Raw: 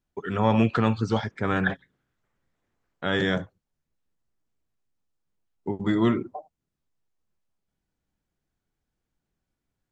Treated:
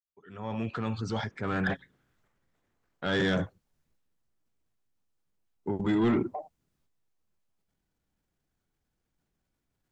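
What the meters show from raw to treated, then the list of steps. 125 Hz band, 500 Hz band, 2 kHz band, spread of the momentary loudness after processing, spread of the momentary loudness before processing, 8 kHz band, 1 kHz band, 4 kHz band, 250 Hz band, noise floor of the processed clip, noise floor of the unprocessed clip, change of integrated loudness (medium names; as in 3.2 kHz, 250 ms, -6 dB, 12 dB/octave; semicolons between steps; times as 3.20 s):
-6.5 dB, -5.0 dB, -4.5 dB, 14 LU, 17 LU, no reading, -7.5 dB, -3.5 dB, -4.5 dB, -82 dBFS, -84 dBFS, -5.5 dB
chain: fade-in on the opening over 2.34 s; transient shaper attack -2 dB, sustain +6 dB; saturation -19 dBFS, distortion -13 dB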